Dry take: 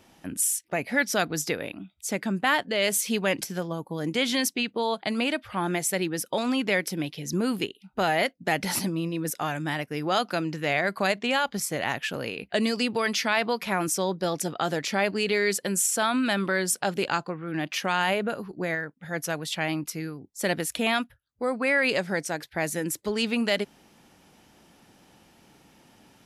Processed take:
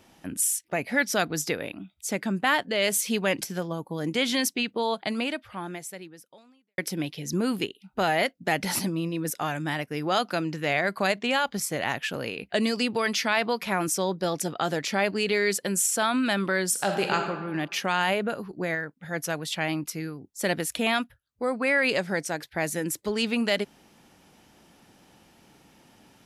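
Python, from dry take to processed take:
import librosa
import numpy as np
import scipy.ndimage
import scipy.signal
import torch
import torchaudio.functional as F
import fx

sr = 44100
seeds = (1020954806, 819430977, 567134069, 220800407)

y = fx.reverb_throw(x, sr, start_s=16.7, length_s=0.59, rt60_s=1.2, drr_db=3.0)
y = fx.edit(y, sr, fx.fade_out_span(start_s=5.0, length_s=1.78, curve='qua'), tone=tone)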